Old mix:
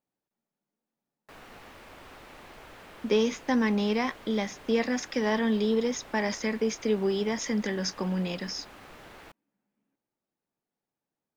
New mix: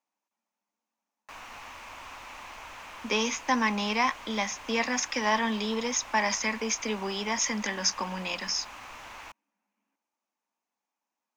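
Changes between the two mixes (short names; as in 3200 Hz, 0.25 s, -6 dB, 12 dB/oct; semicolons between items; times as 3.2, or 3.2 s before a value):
speech: add elliptic high-pass 190 Hz; master: add fifteen-band EQ 160 Hz -9 dB, 400 Hz -9 dB, 1000 Hz +10 dB, 2500 Hz +8 dB, 6300 Hz +10 dB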